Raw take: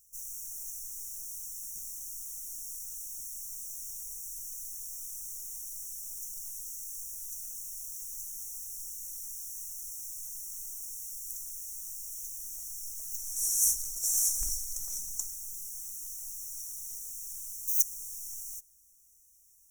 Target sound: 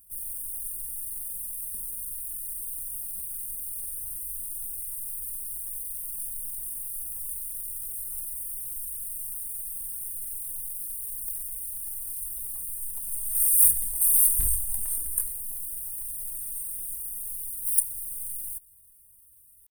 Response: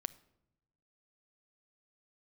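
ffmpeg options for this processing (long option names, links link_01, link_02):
-af "asetrate=68011,aresample=44100,atempo=0.64842,volume=9dB"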